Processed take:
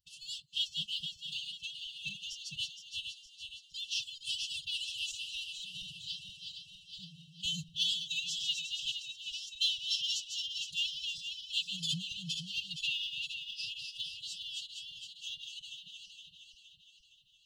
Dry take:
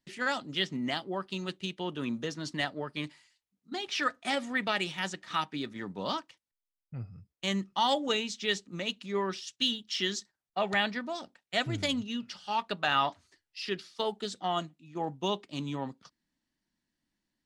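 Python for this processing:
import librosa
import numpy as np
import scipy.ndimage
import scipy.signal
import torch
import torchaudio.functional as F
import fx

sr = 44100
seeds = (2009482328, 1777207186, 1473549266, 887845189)

y = fx.reverse_delay_fb(x, sr, ms=233, feedback_pct=72, wet_db=-5)
y = fx.pitch_keep_formants(y, sr, semitones=9.5)
y = fx.brickwall_bandstop(y, sr, low_hz=170.0, high_hz=2600.0)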